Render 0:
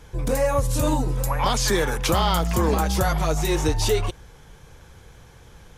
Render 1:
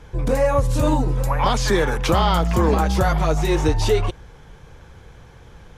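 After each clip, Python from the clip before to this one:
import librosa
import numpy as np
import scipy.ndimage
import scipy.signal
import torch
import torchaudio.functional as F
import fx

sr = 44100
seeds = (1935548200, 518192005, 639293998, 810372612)

y = fx.lowpass(x, sr, hz=3000.0, slope=6)
y = y * librosa.db_to_amplitude(3.5)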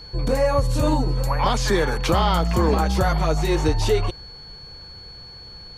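y = x + 10.0 ** (-38.0 / 20.0) * np.sin(2.0 * np.pi * 4400.0 * np.arange(len(x)) / sr)
y = y * librosa.db_to_amplitude(-1.5)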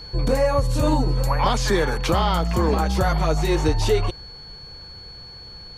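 y = fx.rider(x, sr, range_db=10, speed_s=0.5)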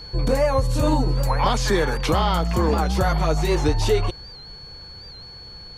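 y = fx.record_warp(x, sr, rpm=78.0, depth_cents=100.0)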